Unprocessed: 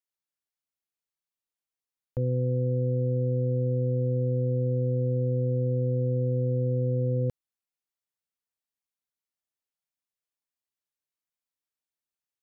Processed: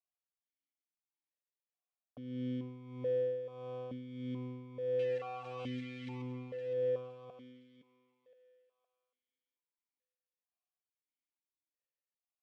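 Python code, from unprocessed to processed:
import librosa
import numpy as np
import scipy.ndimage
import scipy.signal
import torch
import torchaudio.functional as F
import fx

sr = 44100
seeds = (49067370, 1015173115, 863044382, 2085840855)

p1 = (np.mod(10.0 ** (32.0 / 20.0) * x + 1.0, 2.0) - 1.0) / 10.0 ** (32.0 / 20.0)
p2 = x + (p1 * 10.0 ** (-10.0 / 20.0))
p3 = p2 * (1.0 - 0.66 / 2.0 + 0.66 / 2.0 * np.cos(2.0 * np.pi * 1.6 * (np.arange(len(p2)) / sr)))
p4 = fx.quant_dither(p3, sr, seeds[0], bits=6, dither='none', at=(4.99, 6.22))
p5 = fx.air_absorb(p4, sr, metres=79.0)
p6 = fx.echo_thinned(p5, sr, ms=515, feedback_pct=38, hz=530.0, wet_db=-8.0)
p7 = fx.vowel_held(p6, sr, hz=2.3)
y = p7 * 10.0 ** (5.0 / 20.0)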